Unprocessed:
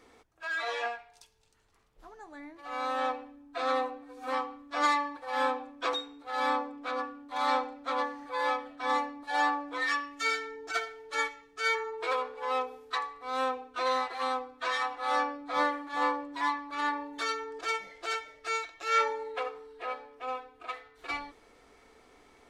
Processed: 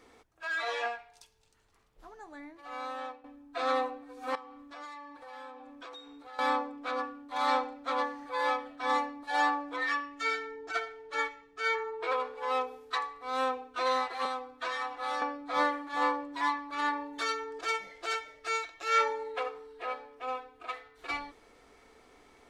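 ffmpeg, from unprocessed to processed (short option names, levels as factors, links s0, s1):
-filter_complex "[0:a]asettb=1/sr,asplit=3[s0][s1][s2];[s0]atrim=end=4.354[s3];[s1]atrim=start=4.35:end=6.39,asetpts=PTS-STARTPTS,afade=t=in:d=0.004:c=qsin,afade=t=out:st=2.036:d=0.004:c=qsin,acompressor=threshold=0.00501:ratio=4:attack=3.2:release=140:knee=1:detection=peak[s4];[s2]atrim=start=6.386[s5];[s3][s4]acrossfade=d=0.004:c1=hsin:c2=qsin[s6];[s6][s5]acrossfade=d=0.004:c1=qsin:c2=hsin,asettb=1/sr,asplit=3[s7][s8][s9];[s7]atrim=end=9.764[s10];[s8]atrim=start=9.76:end=12.2,asetpts=PTS-STARTPTS,afade=t=in:d=0.004:c=qsin,afade=t=out:st=2.436:d=0.004:c=qsin,lowpass=f=2900:p=1[s11];[s9]atrim=start=12.196[s12];[s10][s11]acrossfade=d=0.004:c1=hsin:c2=qsin[s13];[s13][s12]acrossfade=d=0.004:c1=qsin:c2=hsin,asettb=1/sr,asplit=3[s14][s15][s16];[s14]atrim=end=14.254[s17];[s15]atrim=start=14.25:end=15.22,asetpts=PTS-STARTPTS,afade=t=in:d=0.004:c=qsin,afade=t=out:st=0.966:d=0.004:c=qsin,acrossover=split=490|2200[s18][s19][s20];[s18]acompressor=threshold=0.00562:ratio=4[s21];[s19]acompressor=threshold=0.02:ratio=4[s22];[s20]acompressor=threshold=0.00708:ratio=4[s23];[s21][s22][s23]amix=inputs=3:normalize=0[s24];[s16]atrim=start=15.216[s25];[s17][s24]acrossfade=d=0.004:c1=hsin:c2=qsin[s26];[s26][s25]acrossfade=d=0.004:c1=qsin:c2=hsin,asplit=2[s27][s28];[s27]atrim=end=3.24,asetpts=PTS-STARTPTS,afade=t=out:st=2.33:d=0.91:silence=0.158489[s29];[s28]atrim=start=3.24,asetpts=PTS-STARTPTS,afade=t=in:d=0.004:c=hsin:silence=0.158489[s30];[s29][s30]concat=n=2:v=0:a=1"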